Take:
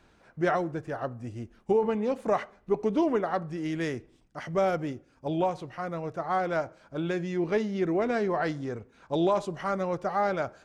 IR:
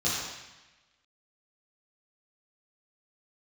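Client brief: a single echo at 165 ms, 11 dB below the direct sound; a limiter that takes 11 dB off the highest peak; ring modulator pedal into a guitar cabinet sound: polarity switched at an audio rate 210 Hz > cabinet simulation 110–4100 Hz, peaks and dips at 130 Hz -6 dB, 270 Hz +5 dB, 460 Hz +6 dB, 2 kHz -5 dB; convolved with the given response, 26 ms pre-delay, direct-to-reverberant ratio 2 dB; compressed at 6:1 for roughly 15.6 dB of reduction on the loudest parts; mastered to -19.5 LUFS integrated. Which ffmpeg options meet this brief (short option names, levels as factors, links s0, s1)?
-filter_complex "[0:a]acompressor=threshold=0.0126:ratio=6,alimiter=level_in=4.73:limit=0.0631:level=0:latency=1,volume=0.211,aecho=1:1:165:0.282,asplit=2[s0][s1];[1:a]atrim=start_sample=2205,adelay=26[s2];[s1][s2]afir=irnorm=-1:irlink=0,volume=0.237[s3];[s0][s3]amix=inputs=2:normalize=0,aeval=exprs='val(0)*sgn(sin(2*PI*210*n/s))':c=same,highpass=110,equalizer=f=130:t=q:w=4:g=-6,equalizer=f=270:t=q:w=4:g=5,equalizer=f=460:t=q:w=4:g=6,equalizer=f=2000:t=q:w=4:g=-5,lowpass=f=4100:w=0.5412,lowpass=f=4100:w=1.3066,volume=12.6"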